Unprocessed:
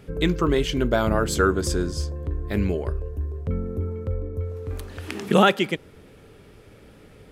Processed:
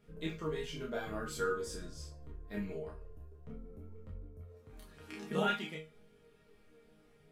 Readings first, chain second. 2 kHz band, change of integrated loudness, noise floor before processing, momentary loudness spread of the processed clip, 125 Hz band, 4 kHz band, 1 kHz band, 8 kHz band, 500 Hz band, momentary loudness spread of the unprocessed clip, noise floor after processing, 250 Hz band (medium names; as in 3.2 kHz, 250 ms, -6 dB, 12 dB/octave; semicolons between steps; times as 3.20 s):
-13.5 dB, -15.5 dB, -49 dBFS, 20 LU, -20.0 dB, -15.5 dB, -15.5 dB, -15.5 dB, -15.5 dB, 13 LU, -65 dBFS, -17.5 dB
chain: chord resonator D#3 sus4, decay 0.31 s; chorus voices 2, 0.48 Hz, delay 28 ms, depth 4.6 ms; trim +3 dB